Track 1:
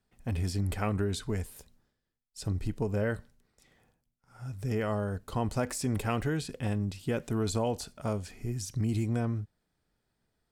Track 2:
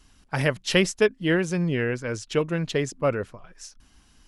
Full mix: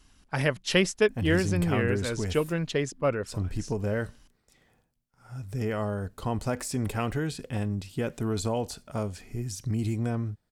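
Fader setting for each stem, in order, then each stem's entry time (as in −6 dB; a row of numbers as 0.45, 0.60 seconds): +1.0, −2.5 decibels; 0.90, 0.00 seconds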